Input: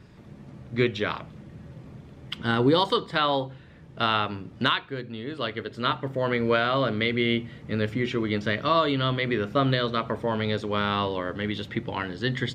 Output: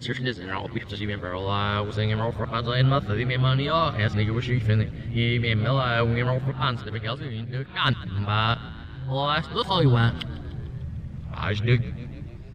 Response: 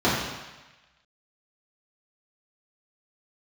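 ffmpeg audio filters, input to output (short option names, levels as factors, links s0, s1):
-filter_complex "[0:a]areverse,asubboost=boost=11:cutoff=90,asplit=6[s0][s1][s2][s3][s4][s5];[s1]adelay=149,afreqshift=56,volume=0.1[s6];[s2]adelay=298,afreqshift=112,volume=0.0631[s7];[s3]adelay=447,afreqshift=168,volume=0.0398[s8];[s4]adelay=596,afreqshift=224,volume=0.0251[s9];[s5]adelay=745,afreqshift=280,volume=0.0157[s10];[s0][s6][s7][s8][s9][s10]amix=inputs=6:normalize=0"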